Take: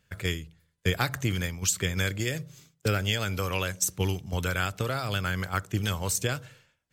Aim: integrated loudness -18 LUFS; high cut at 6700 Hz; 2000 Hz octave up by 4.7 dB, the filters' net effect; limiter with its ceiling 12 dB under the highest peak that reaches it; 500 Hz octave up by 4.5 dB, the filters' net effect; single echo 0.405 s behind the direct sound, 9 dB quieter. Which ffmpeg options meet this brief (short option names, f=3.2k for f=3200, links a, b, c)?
-af "lowpass=6.7k,equalizer=f=500:t=o:g=5,equalizer=f=2k:t=o:g=6,alimiter=limit=-21.5dB:level=0:latency=1,aecho=1:1:405:0.355,volume=14.5dB"